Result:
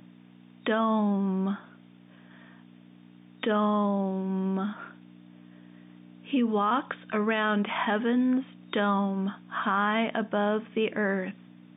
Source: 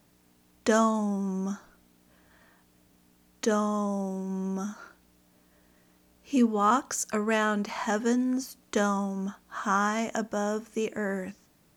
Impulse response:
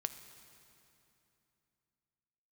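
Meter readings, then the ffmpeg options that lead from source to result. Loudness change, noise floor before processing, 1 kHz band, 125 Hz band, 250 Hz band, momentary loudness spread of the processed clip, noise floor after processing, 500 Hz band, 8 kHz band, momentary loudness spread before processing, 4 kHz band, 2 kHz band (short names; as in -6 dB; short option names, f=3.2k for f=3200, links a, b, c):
+0.5 dB, -64 dBFS, +0.5 dB, n/a, +1.0 dB, 8 LU, -53 dBFS, +0.5 dB, under -40 dB, 11 LU, +3.5 dB, +2.5 dB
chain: -af "aeval=exprs='val(0)+0.00562*(sin(2*PI*60*n/s)+sin(2*PI*2*60*n/s)/2+sin(2*PI*3*60*n/s)/3+sin(2*PI*4*60*n/s)/4+sin(2*PI*5*60*n/s)/5)':c=same,afftfilt=real='re*between(b*sr/4096,120,3700)':imag='im*between(b*sr/4096,120,3700)':win_size=4096:overlap=0.75,alimiter=limit=-21.5dB:level=0:latency=1:release=51,highshelf=f=2.5k:g=8.5,volume=3dB"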